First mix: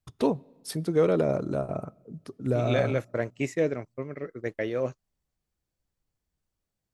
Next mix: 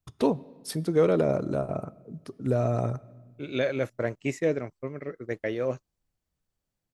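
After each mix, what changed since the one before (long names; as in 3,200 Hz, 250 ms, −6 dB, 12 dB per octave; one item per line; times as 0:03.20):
first voice: send +7.5 dB
second voice: entry +0.85 s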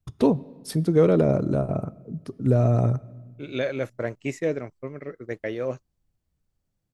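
first voice: add low-shelf EQ 320 Hz +9.5 dB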